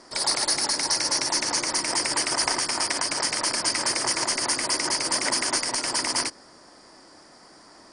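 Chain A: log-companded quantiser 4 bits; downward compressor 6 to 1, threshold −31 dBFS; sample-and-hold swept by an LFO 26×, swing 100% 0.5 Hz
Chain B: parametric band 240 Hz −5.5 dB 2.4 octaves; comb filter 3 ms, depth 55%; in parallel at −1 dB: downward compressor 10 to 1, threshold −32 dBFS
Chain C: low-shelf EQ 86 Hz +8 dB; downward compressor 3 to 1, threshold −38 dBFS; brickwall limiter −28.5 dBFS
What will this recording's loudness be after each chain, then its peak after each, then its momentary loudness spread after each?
−35.0, −20.5, −38.0 LKFS; −15.0, −4.5, −28.5 dBFS; 16, 2, 12 LU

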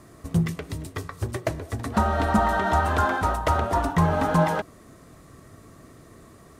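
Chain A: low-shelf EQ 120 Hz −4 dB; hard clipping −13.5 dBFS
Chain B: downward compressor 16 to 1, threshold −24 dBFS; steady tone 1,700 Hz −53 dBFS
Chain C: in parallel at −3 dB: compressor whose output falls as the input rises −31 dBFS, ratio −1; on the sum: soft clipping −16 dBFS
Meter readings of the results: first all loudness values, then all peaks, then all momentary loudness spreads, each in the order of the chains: −25.0, −30.5, −24.5 LKFS; −13.5, −12.0, −16.0 dBFS; 12, 20, 19 LU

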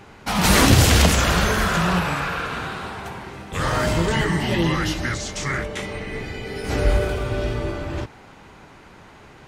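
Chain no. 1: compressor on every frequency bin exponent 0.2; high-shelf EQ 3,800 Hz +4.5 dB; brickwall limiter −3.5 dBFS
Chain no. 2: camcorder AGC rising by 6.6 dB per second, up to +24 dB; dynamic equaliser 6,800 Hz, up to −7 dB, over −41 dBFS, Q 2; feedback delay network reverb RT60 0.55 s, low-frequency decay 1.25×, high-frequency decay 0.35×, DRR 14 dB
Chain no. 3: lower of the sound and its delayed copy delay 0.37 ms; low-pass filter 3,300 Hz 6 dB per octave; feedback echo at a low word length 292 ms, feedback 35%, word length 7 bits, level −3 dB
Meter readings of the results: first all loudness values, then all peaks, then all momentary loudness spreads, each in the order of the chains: −13.0, −19.0, −21.0 LKFS; −3.5, −1.0, −1.5 dBFS; 2, 15, 16 LU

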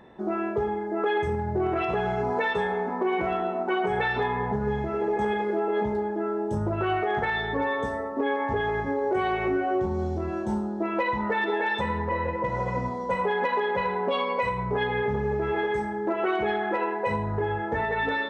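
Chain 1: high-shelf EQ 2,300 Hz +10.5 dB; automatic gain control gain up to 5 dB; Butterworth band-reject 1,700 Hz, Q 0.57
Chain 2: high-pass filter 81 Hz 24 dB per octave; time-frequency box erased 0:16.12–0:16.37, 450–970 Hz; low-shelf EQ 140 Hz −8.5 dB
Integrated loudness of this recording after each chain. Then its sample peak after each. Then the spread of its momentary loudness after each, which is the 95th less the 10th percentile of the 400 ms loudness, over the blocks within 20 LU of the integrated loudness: −23.5, −28.0 LKFS; −10.5, −15.0 dBFS; 3, 4 LU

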